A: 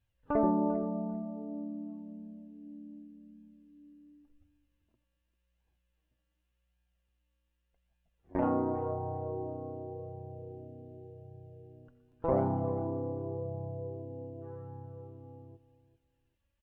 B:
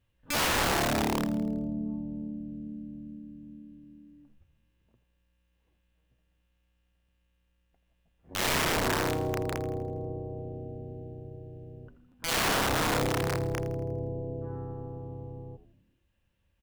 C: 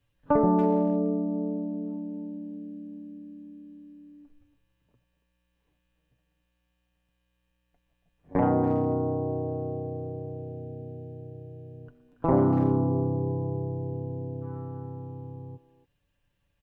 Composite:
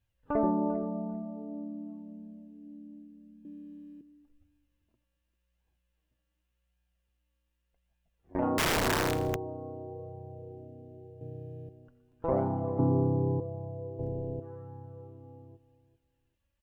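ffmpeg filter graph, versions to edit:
-filter_complex "[2:a]asplit=3[a][b][c];[1:a]asplit=2[d][e];[0:a]asplit=6[f][g][h][i][j][k];[f]atrim=end=3.452[l];[a]atrim=start=3.448:end=4.012[m];[g]atrim=start=4.008:end=8.582[n];[d]atrim=start=8.578:end=9.362[o];[h]atrim=start=9.358:end=11.212[p];[b]atrim=start=11.208:end=11.692[q];[i]atrim=start=11.688:end=12.792[r];[c]atrim=start=12.788:end=13.402[s];[j]atrim=start=13.398:end=13.992[t];[e]atrim=start=13.988:end=14.402[u];[k]atrim=start=14.398[v];[l][m]acrossfade=d=0.004:c1=hsin:c2=hsin[w];[w][n]acrossfade=d=0.004:c1=hsin:c2=hsin[x];[x][o]acrossfade=d=0.004:c1=hsin:c2=hsin[y];[y][p]acrossfade=d=0.004:c1=hsin:c2=hsin[z];[z][q]acrossfade=d=0.004:c1=hsin:c2=hsin[aa];[aa][r]acrossfade=d=0.004:c1=hsin:c2=hsin[ab];[ab][s]acrossfade=d=0.004:c1=hsin:c2=hsin[ac];[ac][t]acrossfade=d=0.004:c1=hsin:c2=hsin[ad];[ad][u]acrossfade=d=0.004:c1=hsin:c2=hsin[ae];[ae][v]acrossfade=d=0.004:c1=hsin:c2=hsin"

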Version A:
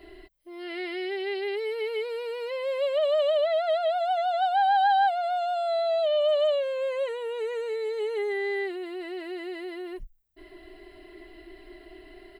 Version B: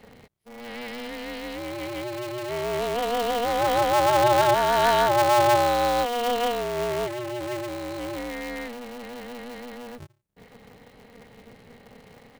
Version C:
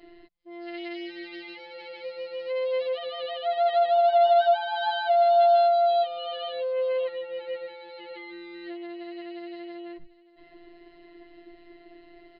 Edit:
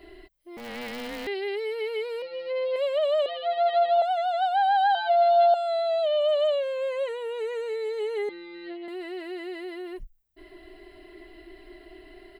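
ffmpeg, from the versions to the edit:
-filter_complex "[2:a]asplit=4[a][b][c][d];[0:a]asplit=6[e][f][g][h][i][j];[e]atrim=end=0.572[k];[1:a]atrim=start=0.568:end=1.272[l];[f]atrim=start=1.268:end=2.222[m];[a]atrim=start=2.218:end=2.762[n];[g]atrim=start=2.758:end=3.262[o];[b]atrim=start=3.258:end=4.022[p];[h]atrim=start=4.018:end=4.952[q];[c]atrim=start=4.948:end=5.542[r];[i]atrim=start=5.538:end=8.292[s];[d]atrim=start=8.288:end=8.882[t];[j]atrim=start=8.878[u];[k][l]acrossfade=d=0.004:c1=hsin:c2=hsin[v];[v][m]acrossfade=d=0.004:c1=hsin:c2=hsin[w];[w][n]acrossfade=d=0.004:c1=hsin:c2=hsin[x];[x][o]acrossfade=d=0.004:c1=hsin:c2=hsin[y];[y][p]acrossfade=d=0.004:c1=hsin:c2=hsin[z];[z][q]acrossfade=d=0.004:c1=hsin:c2=hsin[aa];[aa][r]acrossfade=d=0.004:c1=hsin:c2=hsin[ab];[ab][s]acrossfade=d=0.004:c1=hsin:c2=hsin[ac];[ac][t]acrossfade=d=0.004:c1=hsin:c2=hsin[ad];[ad][u]acrossfade=d=0.004:c1=hsin:c2=hsin"

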